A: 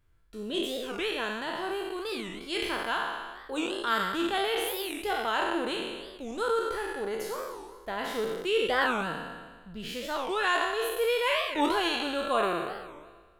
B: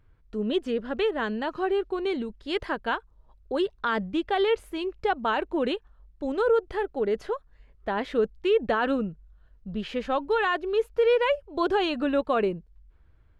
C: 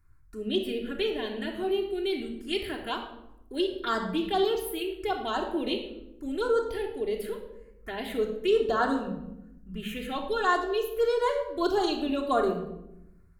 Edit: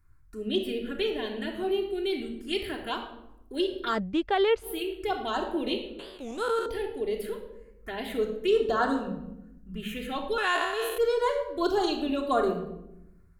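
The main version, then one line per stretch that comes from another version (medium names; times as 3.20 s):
C
3.95–4.66 s: from B, crossfade 0.10 s
5.99–6.66 s: from A
10.38–10.98 s: from A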